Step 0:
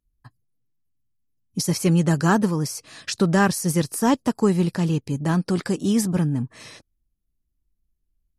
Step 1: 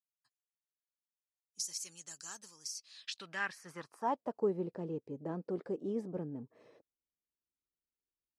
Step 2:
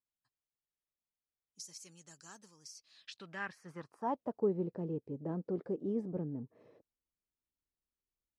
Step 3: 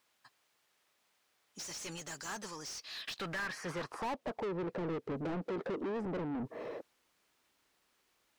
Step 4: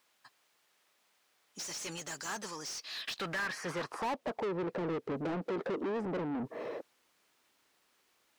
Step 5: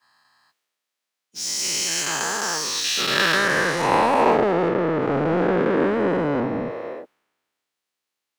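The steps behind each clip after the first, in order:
band-pass sweep 6.7 kHz -> 470 Hz, 2.61–4.48 s; trim -7 dB
tilt EQ -2.5 dB/octave; trim -3 dB
compression 4:1, threshold -42 dBFS, peak gain reduction 13.5 dB; overdrive pedal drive 32 dB, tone 2.6 kHz, clips at -31.5 dBFS; trim +1.5 dB
bass shelf 100 Hz -10 dB; trim +3 dB
every event in the spectrogram widened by 480 ms; three bands expanded up and down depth 70%; trim +8 dB

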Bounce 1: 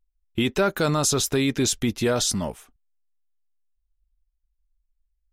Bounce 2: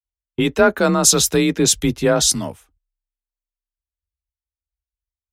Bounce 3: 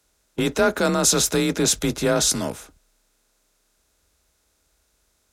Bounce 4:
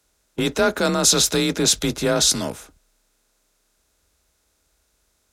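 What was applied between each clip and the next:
frequency shift +33 Hz; three bands expanded up and down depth 100%; trim +5.5 dB
spectral levelling over time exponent 0.6; trim -6.5 dB
dynamic bell 4 kHz, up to +6 dB, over -34 dBFS, Q 1.3

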